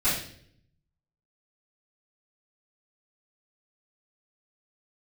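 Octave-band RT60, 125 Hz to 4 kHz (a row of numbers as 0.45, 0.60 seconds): 1.2, 0.95, 0.70, 0.50, 0.60, 0.55 seconds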